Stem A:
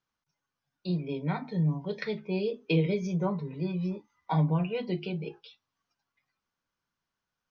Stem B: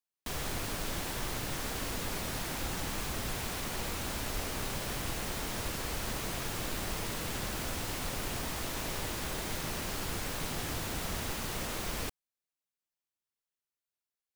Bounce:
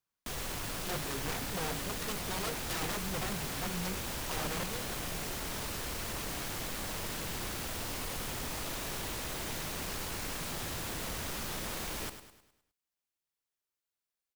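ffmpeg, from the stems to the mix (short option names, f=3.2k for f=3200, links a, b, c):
-filter_complex "[0:a]aeval=exprs='(mod(17.8*val(0)+1,2)-1)/17.8':c=same,volume=-8dB,afade=t=out:st=4.51:d=0.45:silence=0.375837[a];[1:a]aeval=exprs='0.02*(abs(mod(val(0)/0.02+3,4)-2)-1)':c=same,volume=0.5dB,asplit=2[b][c];[c]volume=-10.5dB,aecho=0:1:103|206|309|412|515|618:1|0.46|0.212|0.0973|0.0448|0.0206[d];[a][b][d]amix=inputs=3:normalize=0"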